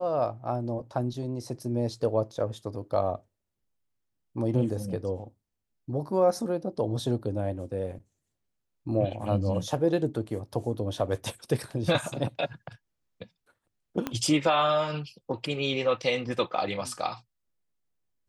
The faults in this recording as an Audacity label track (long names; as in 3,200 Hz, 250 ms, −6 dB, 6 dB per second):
14.070000	14.070000	click −15 dBFS